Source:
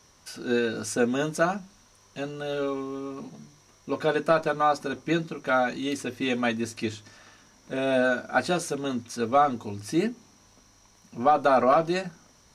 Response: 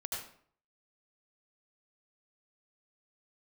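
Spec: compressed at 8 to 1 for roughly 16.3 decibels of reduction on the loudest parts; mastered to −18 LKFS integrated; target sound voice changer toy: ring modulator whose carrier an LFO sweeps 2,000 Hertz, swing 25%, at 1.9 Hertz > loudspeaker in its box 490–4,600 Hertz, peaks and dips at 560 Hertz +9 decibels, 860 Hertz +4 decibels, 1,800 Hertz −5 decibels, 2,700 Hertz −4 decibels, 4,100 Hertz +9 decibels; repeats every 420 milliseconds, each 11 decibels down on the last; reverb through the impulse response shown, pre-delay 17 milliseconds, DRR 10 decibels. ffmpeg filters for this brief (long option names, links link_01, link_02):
-filter_complex "[0:a]acompressor=threshold=-33dB:ratio=8,aecho=1:1:420|840|1260:0.282|0.0789|0.0221,asplit=2[link_01][link_02];[1:a]atrim=start_sample=2205,adelay=17[link_03];[link_02][link_03]afir=irnorm=-1:irlink=0,volume=-11.5dB[link_04];[link_01][link_04]amix=inputs=2:normalize=0,aeval=exprs='val(0)*sin(2*PI*2000*n/s+2000*0.25/1.9*sin(2*PI*1.9*n/s))':channel_layout=same,highpass=490,equalizer=frequency=560:width_type=q:width=4:gain=9,equalizer=frequency=860:width_type=q:width=4:gain=4,equalizer=frequency=1800:width_type=q:width=4:gain=-5,equalizer=frequency=2700:width_type=q:width=4:gain=-4,equalizer=frequency=4100:width_type=q:width=4:gain=9,lowpass=frequency=4600:width=0.5412,lowpass=frequency=4600:width=1.3066,volume=21.5dB"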